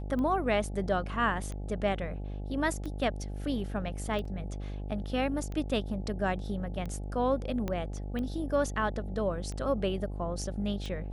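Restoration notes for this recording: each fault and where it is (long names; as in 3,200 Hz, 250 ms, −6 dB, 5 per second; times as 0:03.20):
mains buzz 50 Hz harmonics 17 −37 dBFS
scratch tick 45 rpm −26 dBFS
0:04.25: drop-out 4 ms
0:07.68: click −20 dBFS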